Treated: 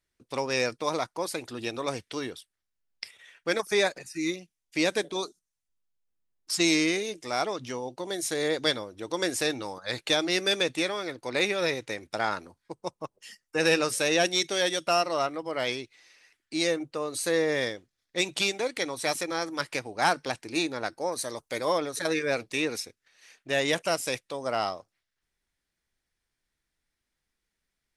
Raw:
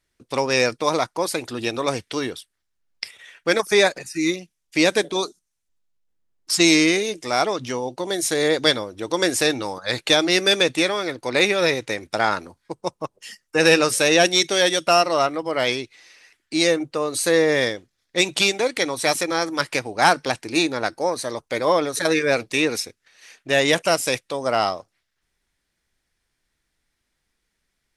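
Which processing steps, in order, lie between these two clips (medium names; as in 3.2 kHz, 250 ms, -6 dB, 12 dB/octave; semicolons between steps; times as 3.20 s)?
21.12–21.78 s: treble shelf 6.4 kHz +11 dB; trim -8 dB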